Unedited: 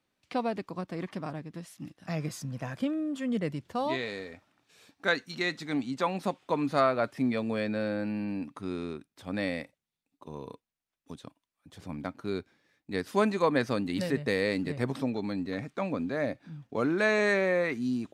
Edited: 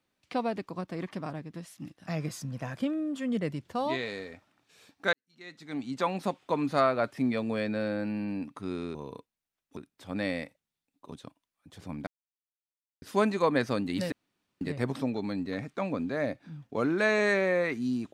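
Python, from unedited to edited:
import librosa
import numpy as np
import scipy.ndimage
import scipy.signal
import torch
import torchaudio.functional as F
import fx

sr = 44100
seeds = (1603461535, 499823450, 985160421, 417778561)

y = fx.edit(x, sr, fx.fade_in_span(start_s=5.13, length_s=0.84, curve='qua'),
    fx.move(start_s=10.3, length_s=0.82, to_s=8.95),
    fx.silence(start_s=12.07, length_s=0.95),
    fx.room_tone_fill(start_s=14.12, length_s=0.49), tone=tone)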